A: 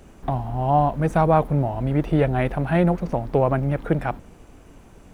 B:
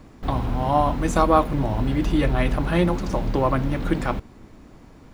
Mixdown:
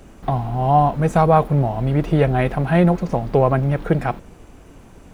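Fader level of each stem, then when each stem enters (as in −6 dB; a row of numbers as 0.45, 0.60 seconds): +3.0, −8.0 decibels; 0.00, 0.00 seconds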